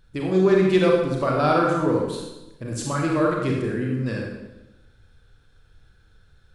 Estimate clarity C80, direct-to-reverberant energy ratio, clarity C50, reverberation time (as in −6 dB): 3.5 dB, −1.5 dB, 1.0 dB, 1.0 s